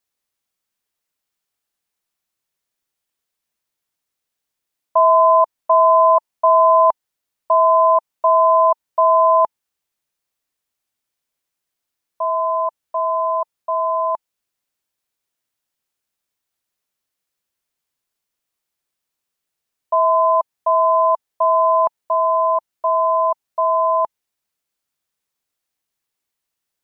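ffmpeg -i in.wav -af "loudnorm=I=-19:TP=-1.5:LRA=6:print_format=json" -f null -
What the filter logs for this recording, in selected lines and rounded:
"input_i" : "-16.4",
"input_tp" : "-5.6",
"input_lra" : "15.7",
"input_thresh" : "-26.5",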